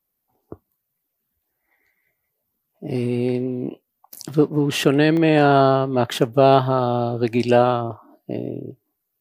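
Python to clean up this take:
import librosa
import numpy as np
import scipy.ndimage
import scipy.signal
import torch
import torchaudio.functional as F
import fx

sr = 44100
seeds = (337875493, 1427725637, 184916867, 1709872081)

y = fx.fix_interpolate(x, sr, at_s=(0.98, 5.17, 8.88), length_ms=1.1)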